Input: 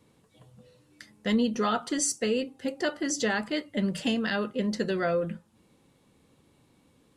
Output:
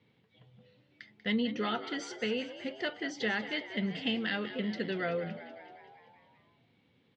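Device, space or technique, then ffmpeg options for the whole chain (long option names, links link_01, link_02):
frequency-shifting delay pedal into a guitar cabinet: -filter_complex "[0:a]asplit=8[link_01][link_02][link_03][link_04][link_05][link_06][link_07][link_08];[link_02]adelay=190,afreqshift=72,volume=-13dB[link_09];[link_03]adelay=380,afreqshift=144,volume=-17.2dB[link_10];[link_04]adelay=570,afreqshift=216,volume=-21.3dB[link_11];[link_05]adelay=760,afreqshift=288,volume=-25.5dB[link_12];[link_06]adelay=950,afreqshift=360,volume=-29.6dB[link_13];[link_07]adelay=1140,afreqshift=432,volume=-33.8dB[link_14];[link_08]adelay=1330,afreqshift=504,volume=-37.9dB[link_15];[link_01][link_09][link_10][link_11][link_12][link_13][link_14][link_15]amix=inputs=8:normalize=0,highpass=110,equalizer=frequency=110:width_type=q:width=4:gain=6,equalizer=frequency=310:width_type=q:width=4:gain=-5,equalizer=frequency=590:width_type=q:width=4:gain=-4,equalizer=frequency=1100:width_type=q:width=4:gain=-7,equalizer=frequency=2100:width_type=q:width=4:gain=7,equalizer=frequency=3200:width_type=q:width=4:gain=5,lowpass=frequency=4300:width=0.5412,lowpass=frequency=4300:width=1.3066,volume=-5dB"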